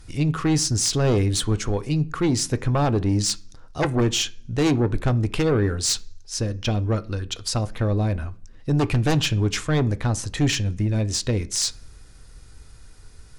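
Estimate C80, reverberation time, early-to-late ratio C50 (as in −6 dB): 26.5 dB, 0.45 s, 21.5 dB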